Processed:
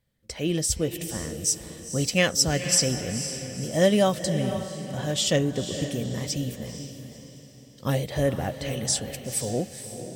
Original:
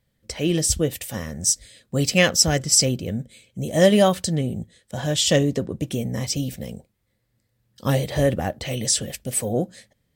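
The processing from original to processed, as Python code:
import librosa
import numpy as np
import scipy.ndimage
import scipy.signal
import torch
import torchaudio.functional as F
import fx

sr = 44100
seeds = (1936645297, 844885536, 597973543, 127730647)

y = fx.echo_diffused(x, sr, ms=490, feedback_pct=42, wet_db=-9.5)
y = F.gain(torch.from_numpy(y), -4.5).numpy()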